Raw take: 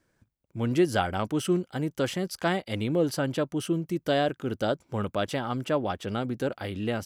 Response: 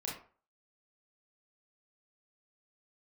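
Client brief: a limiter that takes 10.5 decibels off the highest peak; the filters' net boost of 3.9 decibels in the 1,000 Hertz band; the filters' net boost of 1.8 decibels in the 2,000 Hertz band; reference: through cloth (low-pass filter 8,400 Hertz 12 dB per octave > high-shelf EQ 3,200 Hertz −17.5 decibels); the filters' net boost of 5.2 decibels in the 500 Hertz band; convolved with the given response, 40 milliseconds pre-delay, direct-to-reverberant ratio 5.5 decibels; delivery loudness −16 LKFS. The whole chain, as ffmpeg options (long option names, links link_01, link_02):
-filter_complex "[0:a]equalizer=frequency=500:width_type=o:gain=6,equalizer=frequency=1000:width_type=o:gain=3.5,equalizer=frequency=2000:width_type=o:gain=6,alimiter=limit=-16dB:level=0:latency=1,asplit=2[link_01][link_02];[1:a]atrim=start_sample=2205,adelay=40[link_03];[link_02][link_03]afir=irnorm=-1:irlink=0,volume=-6.5dB[link_04];[link_01][link_04]amix=inputs=2:normalize=0,lowpass=8400,highshelf=frequency=3200:gain=-17.5,volume=11.5dB"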